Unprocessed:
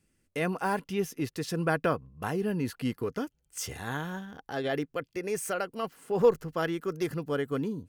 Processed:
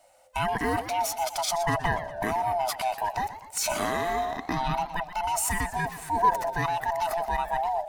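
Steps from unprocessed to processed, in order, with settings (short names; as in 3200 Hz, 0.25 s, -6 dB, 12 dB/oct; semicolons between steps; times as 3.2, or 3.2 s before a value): band-swap scrambler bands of 500 Hz; in parallel at +2.5 dB: negative-ratio compressor -39 dBFS, ratio -1; on the sum: warbling echo 0.122 s, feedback 52%, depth 161 cents, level -13 dB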